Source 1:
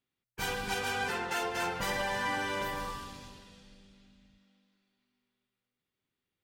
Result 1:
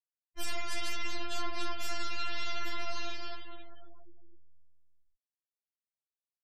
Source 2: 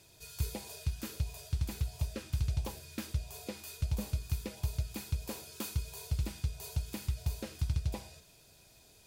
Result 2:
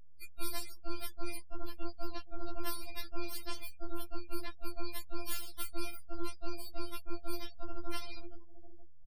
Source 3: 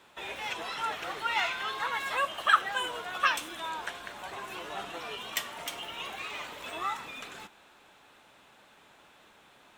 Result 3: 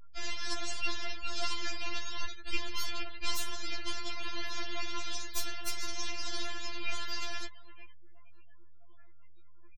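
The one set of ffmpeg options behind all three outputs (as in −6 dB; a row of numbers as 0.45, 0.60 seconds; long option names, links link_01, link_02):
-af "superequalizer=9b=0.501:15b=0.282,aeval=exprs='val(0)*sin(2*PI*230*n/s)':channel_layout=same,aresample=32000,aresample=44100,aecho=1:1:472|944|1416:0.126|0.0504|0.0201,areverse,acompressor=threshold=-43dB:ratio=6,areverse,aeval=exprs='abs(val(0))':channel_layout=same,afftfilt=real='re*gte(hypot(re,im),0.00141)':imag='im*gte(hypot(re,im),0.00141)':win_size=1024:overlap=0.75,highshelf=frequency=3300:gain=6.5,afftfilt=real='re*4*eq(mod(b,16),0)':imag='im*4*eq(mod(b,16),0)':win_size=2048:overlap=0.75,volume=12dB"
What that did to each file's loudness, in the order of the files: −5.0, −7.0, −5.5 LU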